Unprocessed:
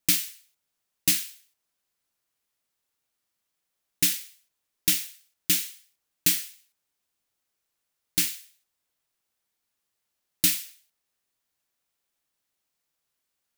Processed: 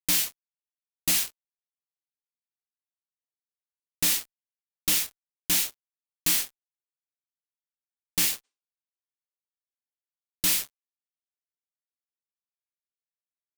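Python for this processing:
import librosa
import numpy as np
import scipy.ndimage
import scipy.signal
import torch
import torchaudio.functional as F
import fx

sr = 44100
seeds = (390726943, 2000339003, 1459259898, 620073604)

y = fx.fuzz(x, sr, gain_db=34.0, gate_db=-38.0)
y = fx.spec_repair(y, sr, seeds[0], start_s=8.47, length_s=0.38, low_hz=210.0, high_hz=9600.0, source='both')
y = y * 10.0 ** (-6.5 / 20.0)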